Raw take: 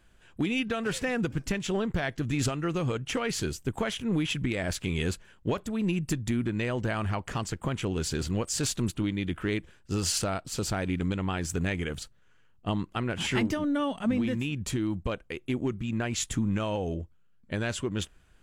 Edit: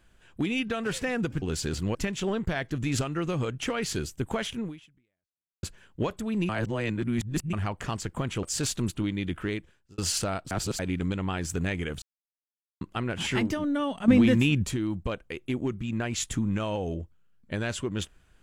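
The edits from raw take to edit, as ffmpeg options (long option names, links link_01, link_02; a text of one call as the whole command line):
ffmpeg -i in.wav -filter_complex "[0:a]asplit=14[link_01][link_02][link_03][link_04][link_05][link_06][link_07][link_08][link_09][link_10][link_11][link_12][link_13][link_14];[link_01]atrim=end=1.422[link_15];[link_02]atrim=start=7.898:end=8.432[link_16];[link_03]atrim=start=1.418:end=5.1,asetpts=PTS-STARTPTS,afade=type=out:start_time=2.632:duration=1.05:curve=exp[link_17];[link_04]atrim=start=5.1:end=5.962,asetpts=PTS-STARTPTS,afade=type=in:duration=0.004:curve=hsin[link_18];[link_05]atrim=start=5.958:end=7.002,asetpts=PTS-STARTPTS,areverse[link_19];[link_06]atrim=start=6.998:end=7.902[link_20];[link_07]atrim=start=8.428:end=9.98,asetpts=PTS-STARTPTS,afade=type=out:start_time=0.972:duration=0.58[link_21];[link_08]atrim=start=9.98:end=10.512,asetpts=PTS-STARTPTS,afade=type=in:duration=0.004:curve=hsin[link_22];[link_09]atrim=start=10.508:end=10.792,asetpts=PTS-STARTPTS,areverse[link_23];[link_10]atrim=start=10.788:end=12.02,asetpts=PTS-STARTPTS,afade=type=out:start_time=1.228:duration=0.004:curve=hsin[link_24];[link_11]atrim=start=12.02:end=12.81,asetpts=PTS-STARTPTS,volume=0[link_25];[link_12]atrim=start=12.81:end=14.082,asetpts=PTS-STARTPTS,afade=type=in:duration=0.004:curve=hsin[link_26];[link_13]atrim=start=14.078:end=14.662,asetpts=PTS-STARTPTS,volume=8.5dB[link_27];[link_14]atrim=start=14.658[link_28];[link_15][link_16]acrossfade=duration=0.004:curve1=hsin:curve2=hsin[link_29];[link_17][link_18]concat=n=2:v=0:a=1[link_30];[link_29][link_30]acrossfade=duration=0.004:curve1=hsin:curve2=hsin[link_31];[link_31][link_19]acrossfade=duration=0.004:curve1=hsin:curve2=hsin[link_32];[link_32][link_20]acrossfade=duration=0.004:curve1=hsin:curve2=hsin[link_33];[link_21][link_22]concat=n=2:v=0:a=1[link_34];[link_33][link_34]acrossfade=duration=0.004:curve1=hsin:curve2=hsin[link_35];[link_35][link_23]acrossfade=duration=0.004:curve1=hsin:curve2=hsin[link_36];[link_24][link_25][link_26]concat=n=3:v=0:a=1[link_37];[link_36][link_37]acrossfade=duration=0.004:curve1=hsin:curve2=hsin[link_38];[link_38][link_27]acrossfade=duration=0.004:curve1=hsin:curve2=hsin[link_39];[link_39][link_28]acrossfade=duration=0.004:curve1=hsin:curve2=hsin" out.wav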